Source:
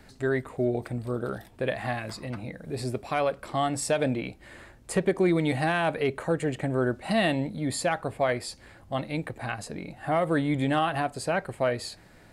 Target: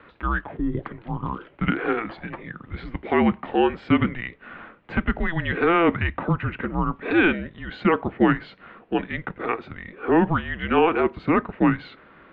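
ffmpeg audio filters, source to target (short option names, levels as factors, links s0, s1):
-af "highpass=f=500:t=q:w=0.5412,highpass=f=500:t=q:w=1.307,lowpass=f=3200:t=q:w=0.5176,lowpass=f=3200:t=q:w=0.7071,lowpass=f=3200:t=q:w=1.932,afreqshift=-340,volume=2.66"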